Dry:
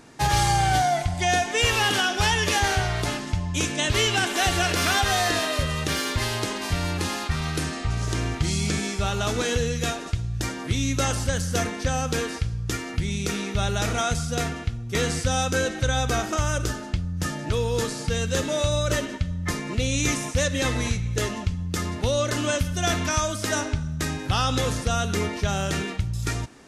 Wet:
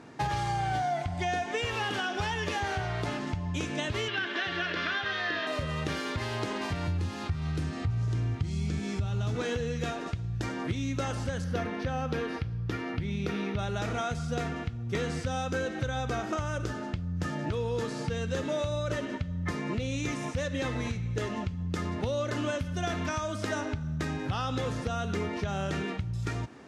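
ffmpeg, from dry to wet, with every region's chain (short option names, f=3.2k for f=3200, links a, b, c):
-filter_complex "[0:a]asettb=1/sr,asplit=3[a][b][c];[a]atrim=end=4.084[d];[b]atrim=start=4.08:end=5.47,asetpts=PTS-STARTPTS,afade=t=in:d=0.004:c=qsin,afade=t=out:st=1.386:d=0.004:c=qsin,highpass=170,equalizer=f=240:t=q:w=4:g=-6,equalizer=f=460:t=q:w=4:g=-4,equalizer=f=840:t=q:w=4:g=-6,equalizer=f=1.7k:t=q:w=4:g=7,equalizer=f=3.3k:t=q:w=4:g=5,lowpass=f=4.8k:w=0.5412,lowpass=f=4.8k:w=1.3066,bandreject=f=740:w=7.9[e];[c]atrim=start=5.466[f];[d][e]acrossfade=d=0.004:c1=hsin:c2=qsin[g];[g][f]acrossfade=d=0.004:c1=qsin:c2=hsin,asettb=1/sr,asplit=3[h][i][j];[h]atrim=end=6.874[k];[i]atrim=start=6.87:end=9.35,asetpts=PTS-STARTPTS,afade=t=in:d=0.004:c=qsin,afade=t=out:st=2.476:d=0.004:c=qsin,acrossover=split=350|3000[l][m][n];[m]acompressor=threshold=-41dB:ratio=1.5:attack=3.2:release=140:knee=2.83:detection=peak[o];[l][o][n]amix=inputs=3:normalize=0,equalizer=f=98:t=o:w=0.97:g=13.5[p];[j]atrim=start=9.346[q];[k][p]acrossfade=d=0.004:c1=hsin:c2=qsin[r];[r][q]acrossfade=d=0.004:c1=qsin:c2=hsin,asettb=1/sr,asplit=3[s][t][u];[s]atrim=end=11.444[v];[t]atrim=start=11.44:end=13.59,asetpts=PTS-STARTPTS,afade=t=in:d=0.004:c=qsin,afade=t=out:st=2.146:d=0.004:c=qsin,highpass=42,equalizer=f=7.7k:w=1.4:g=-12.5[w];[u]atrim=start=13.586[x];[v][w]acrossfade=d=0.004:c1=hsin:c2=qsin[y];[y][x]acrossfade=d=0.004:c1=qsin:c2=hsin,acompressor=threshold=-28dB:ratio=4,highpass=80,aemphasis=mode=reproduction:type=75fm"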